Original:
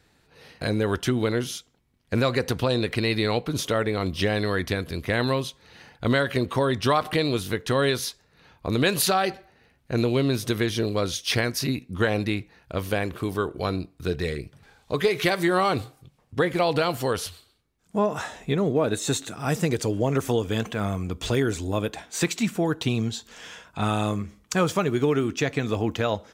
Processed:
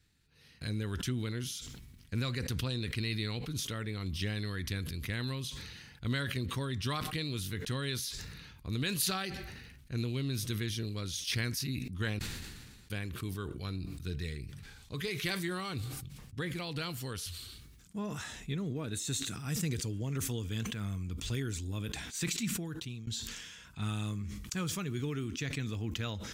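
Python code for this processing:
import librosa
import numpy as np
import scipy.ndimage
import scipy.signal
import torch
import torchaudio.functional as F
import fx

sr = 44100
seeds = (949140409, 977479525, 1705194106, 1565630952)

y = fx.edit(x, sr, fx.room_tone_fill(start_s=12.19, length_s=0.71),
    fx.fade_out_to(start_s=22.49, length_s=0.58, floor_db=-22.5), tone=tone)
y = fx.tone_stack(y, sr, knobs='6-0-2')
y = fx.sustainer(y, sr, db_per_s=33.0)
y = F.gain(torch.from_numpy(y), 6.5).numpy()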